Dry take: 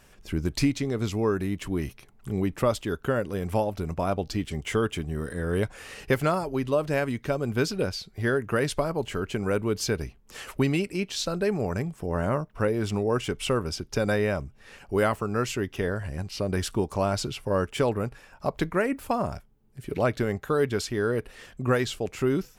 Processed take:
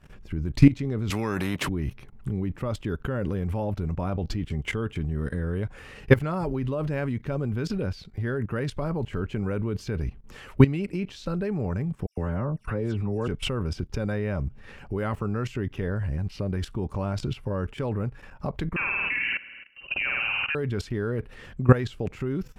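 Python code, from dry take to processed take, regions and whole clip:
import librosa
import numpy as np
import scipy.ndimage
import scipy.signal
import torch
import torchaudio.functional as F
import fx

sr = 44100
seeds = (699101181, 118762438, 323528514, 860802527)

y = fx.chain(x, sr, fx.highpass(hz=170.0, slope=12),
    fx.spectral_comp(ratio=2.0), at=(1.1, 1.69))
y = fx.chain(y, sr, fx.lowpass(hz=12000.0, slope=12),
    fx.dispersion(late='lows', ms=114.0, hz=2700.0), at=(12.06, 13.28))
y = fx.chain(y, sr, fx.room_flutter(wall_m=8.9, rt60_s=0.94),
    fx.freq_invert(carrier_hz=2900), at=(18.76, 20.55))
y = fx.bass_treble(y, sr, bass_db=8, treble_db=-11)
y = fx.notch(y, sr, hz=670.0, q=12.0)
y = fx.level_steps(y, sr, step_db=17)
y = y * 10.0 ** (6.5 / 20.0)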